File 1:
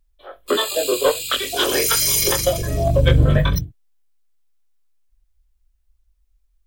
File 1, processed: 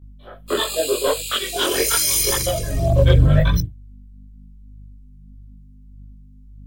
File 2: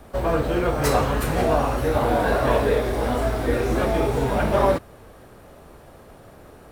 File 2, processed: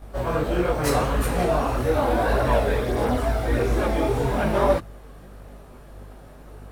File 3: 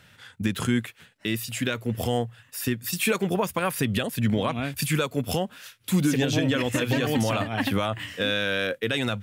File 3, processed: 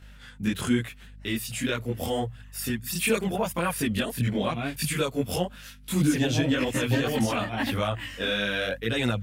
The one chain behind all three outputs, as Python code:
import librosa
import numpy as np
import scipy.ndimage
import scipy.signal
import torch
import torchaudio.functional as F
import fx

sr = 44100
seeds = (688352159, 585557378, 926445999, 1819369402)

y = fx.dynamic_eq(x, sr, hz=9300.0, q=4.7, threshold_db=-48.0, ratio=4.0, max_db=4)
y = fx.add_hum(y, sr, base_hz=50, snr_db=22)
y = fx.chorus_voices(y, sr, voices=2, hz=0.83, base_ms=21, depth_ms=4.1, mix_pct=60)
y = y * librosa.db_to_amplitude(1.5)